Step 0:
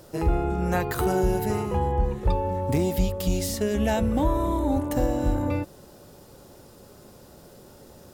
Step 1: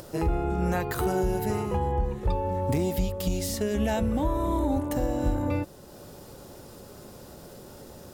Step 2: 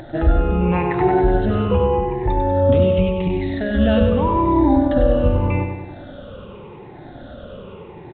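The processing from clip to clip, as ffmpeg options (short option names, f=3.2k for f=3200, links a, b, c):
-af "acompressor=mode=upward:threshold=-39dB:ratio=2.5,alimiter=limit=-16.5dB:level=0:latency=1:release=380"
-filter_complex "[0:a]afftfilt=real='re*pow(10,16/40*sin(2*PI*(0.78*log(max(b,1)*sr/1024/100)/log(2)-(-0.85)*(pts-256)/sr)))':imag='im*pow(10,16/40*sin(2*PI*(0.78*log(max(b,1)*sr/1024/100)/log(2)-(-0.85)*(pts-256)/sr)))':win_size=1024:overlap=0.75,asplit=2[a][b];[b]aecho=0:1:97|194|291|388|485|582|679:0.501|0.266|0.141|0.0746|0.0395|0.021|0.0111[c];[a][c]amix=inputs=2:normalize=0,aresample=8000,aresample=44100,volume=5.5dB"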